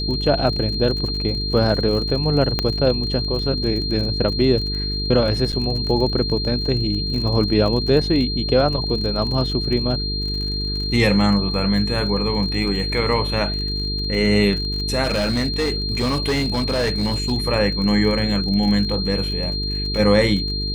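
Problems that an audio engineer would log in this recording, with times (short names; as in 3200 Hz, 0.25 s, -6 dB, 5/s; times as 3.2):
buzz 50 Hz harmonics 9 -26 dBFS
crackle 36/s -27 dBFS
tone 4200 Hz -25 dBFS
2.59 pop -6 dBFS
5.52–5.53 gap 7.3 ms
15.03–17.33 clipped -16 dBFS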